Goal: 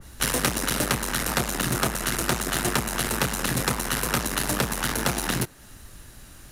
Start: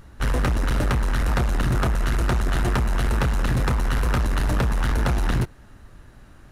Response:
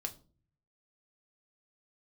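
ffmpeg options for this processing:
-filter_complex "[0:a]acrossover=split=140|1500[s0][s1][s2];[s0]acompressor=threshold=0.0126:ratio=6[s3];[s2]crystalizer=i=5.5:c=0[s4];[s3][s1][s4]amix=inputs=3:normalize=0,adynamicequalizer=threshold=0.01:dfrequency=2300:dqfactor=0.7:tfrequency=2300:tqfactor=0.7:attack=5:release=100:ratio=0.375:range=2:mode=cutabove:tftype=highshelf"

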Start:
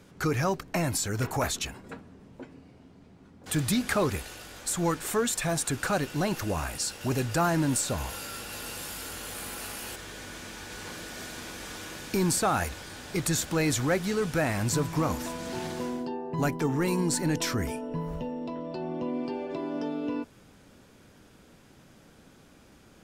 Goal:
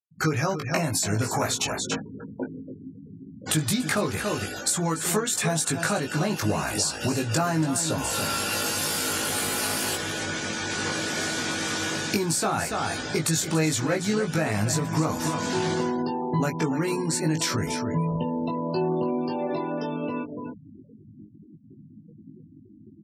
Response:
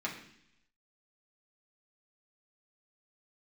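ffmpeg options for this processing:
-filter_complex "[0:a]bass=f=250:g=0,treble=f=4000:g=5,asplit=2[s0][s1];[s1]aecho=0:1:285:0.282[s2];[s0][s2]amix=inputs=2:normalize=0,dynaudnorm=f=160:g=3:m=2.82,afftfilt=real='re*gte(hypot(re,im),0.0251)':imag='im*gte(hypot(re,im),0.0251)':win_size=1024:overlap=0.75,highshelf=f=11000:g=-11.5,acompressor=threshold=0.0562:ratio=10,highpass=f=92:w=0.5412,highpass=f=92:w=1.3066,asplit=2[s3][s4];[s4]adelay=19,volume=0.708[s5];[s3][s5]amix=inputs=2:normalize=0,volume=1.19"

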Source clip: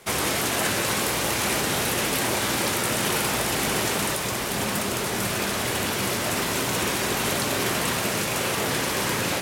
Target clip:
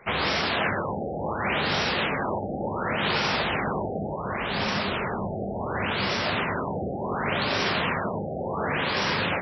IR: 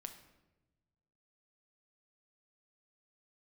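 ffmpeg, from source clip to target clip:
-af "equalizer=f=320:w=1.5:g=-5.5,bandreject=f=60:t=h:w=6,bandreject=f=120:t=h:w=6,afftfilt=real='re*lt(b*sr/1024,800*pow(5900/800,0.5+0.5*sin(2*PI*0.69*pts/sr)))':imag='im*lt(b*sr/1024,800*pow(5900/800,0.5+0.5*sin(2*PI*0.69*pts/sr)))':win_size=1024:overlap=0.75,volume=1.19"

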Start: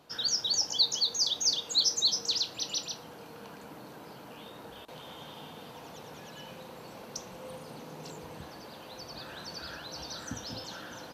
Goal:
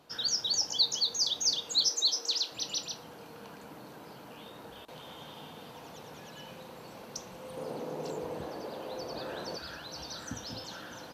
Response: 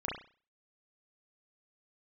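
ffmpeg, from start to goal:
-filter_complex "[0:a]asettb=1/sr,asplit=3[s0][s1][s2];[s0]atrim=end=1.894[s3];[s1]atrim=start=1.89:end=2.52,asetpts=PTS-STARTPTS,afade=t=in:d=0.004:c=qsin,afade=t=out:st=0.626:d=0.004:c=qsin,highpass=f=290:w=0.5412,highpass=f=290:w=1.3066[s4];[s2]atrim=start=2.516[s5];[s3][s4]acrossfade=d=0.004:c1=hsin:c2=qsin[s6];[s6][s5]acrossfade=d=0.004:c1=qsin:c2=hsin,asettb=1/sr,asplit=3[s7][s8][s9];[s7]atrim=end=7.574[s10];[s8]atrim=start=7.57:end=9.57,asetpts=PTS-STARTPTS,afade=t=in:d=0.004:c=qsin,afade=t=out:st=1.996:d=0.004:c=qsin,equalizer=f=470:t=o:w=1.8:g=11.5[s11];[s9]atrim=start=9.566[s12];[s10][s11]acrossfade=d=0.004:c1=hsin:c2=qsin[s13];[s13][s12]acrossfade=d=0.004:c1=qsin:c2=hsin,volume=0.891"

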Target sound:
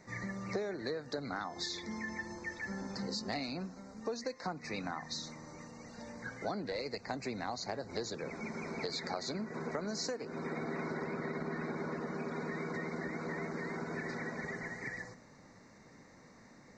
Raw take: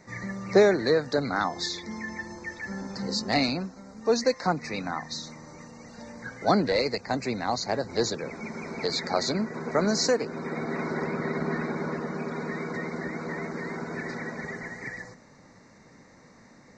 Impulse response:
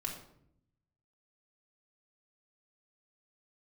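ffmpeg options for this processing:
-filter_complex "[0:a]acompressor=threshold=0.0316:ratio=10,asplit=2[s0][s1];[1:a]atrim=start_sample=2205[s2];[s1][s2]afir=irnorm=-1:irlink=0,volume=0.112[s3];[s0][s3]amix=inputs=2:normalize=0,volume=0.562"

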